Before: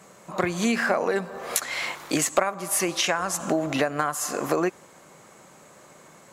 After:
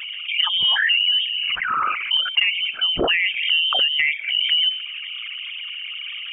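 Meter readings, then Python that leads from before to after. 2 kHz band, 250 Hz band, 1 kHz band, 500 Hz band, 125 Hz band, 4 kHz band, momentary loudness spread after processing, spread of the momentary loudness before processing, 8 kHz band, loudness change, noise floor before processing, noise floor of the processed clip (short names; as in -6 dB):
+9.0 dB, -10.5 dB, +0.5 dB, -7.5 dB, -10.0 dB, +18.5 dB, 13 LU, 6 LU, under -40 dB, +6.5 dB, -52 dBFS, -33 dBFS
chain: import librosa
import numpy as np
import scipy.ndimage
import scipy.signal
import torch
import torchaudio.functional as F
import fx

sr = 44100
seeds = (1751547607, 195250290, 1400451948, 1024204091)

p1 = fx.envelope_sharpen(x, sr, power=3.0)
p2 = np.clip(p1, -10.0 ** (-20.0 / 20.0), 10.0 ** (-20.0 / 20.0))
p3 = p1 + (p2 * 10.0 ** (-8.5 / 20.0))
p4 = fx.hum_notches(p3, sr, base_hz=50, count=7)
p5 = fx.freq_invert(p4, sr, carrier_hz=3400)
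y = fx.env_flatten(p5, sr, amount_pct=50)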